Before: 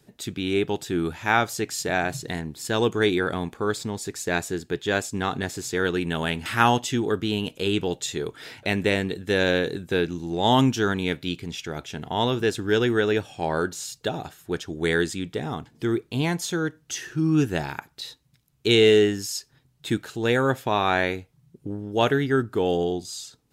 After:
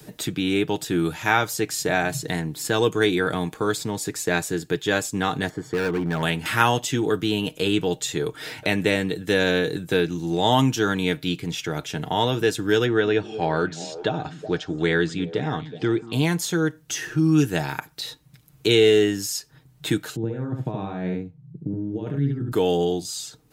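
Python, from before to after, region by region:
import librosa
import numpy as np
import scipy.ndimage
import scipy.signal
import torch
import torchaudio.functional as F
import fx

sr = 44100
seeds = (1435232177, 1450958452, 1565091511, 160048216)

y = fx.chain(x, sr, fx.savgol(points=41),
    fx.clip_hard(threshold_db=-23.5), at=(5.49, 6.23))
y = fx.chain(y, sr, fx.gaussian_blur(sigma=1.7),
    fx.echo_stepped(ms=185, hz=200.0, octaves=1.4, feedback_pct=70, wet_db=-11.0), at=(12.86, 16.13))
y = fx.chain(y, sr, fx.over_compress(threshold_db=-24.0, ratio=-0.5),
    fx.bandpass_q(hz=150.0, q=1.3),
    fx.echo_single(ms=71, db=-3.0), at=(20.16, 22.52))
y = fx.high_shelf(y, sr, hz=11000.0, db=8.5)
y = y + 0.42 * np.pad(y, (int(6.5 * sr / 1000.0), 0))[:len(y)]
y = fx.band_squash(y, sr, depth_pct=40)
y = y * 10.0 ** (1.0 / 20.0)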